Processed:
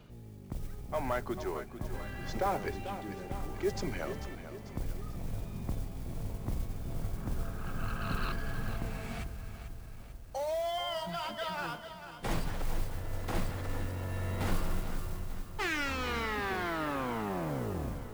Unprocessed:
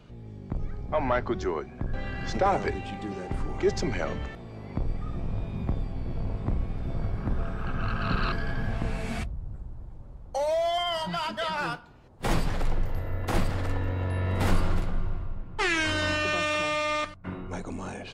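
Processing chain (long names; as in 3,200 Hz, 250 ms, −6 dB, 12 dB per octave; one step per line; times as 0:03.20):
turntable brake at the end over 2.56 s
reversed playback
upward compression, threshold −35 dBFS
reversed playback
noise that follows the level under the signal 22 dB
feedback echo at a low word length 443 ms, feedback 55%, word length 8 bits, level −10.5 dB
level −7.5 dB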